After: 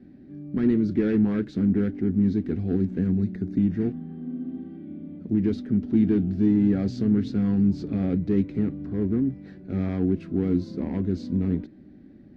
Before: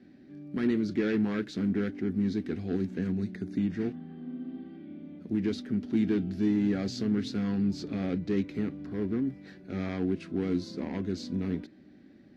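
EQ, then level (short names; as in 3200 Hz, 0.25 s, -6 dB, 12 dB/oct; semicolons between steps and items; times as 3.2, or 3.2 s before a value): tilt -3 dB/oct; 0.0 dB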